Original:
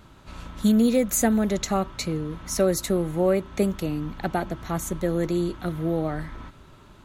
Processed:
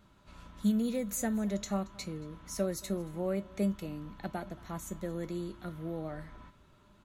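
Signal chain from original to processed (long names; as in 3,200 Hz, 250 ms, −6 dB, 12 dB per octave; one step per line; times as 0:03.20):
tuned comb filter 200 Hz, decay 0.2 s, harmonics odd, mix 70%
on a send: single-tap delay 227 ms −23 dB
on the sum: level −3.5 dB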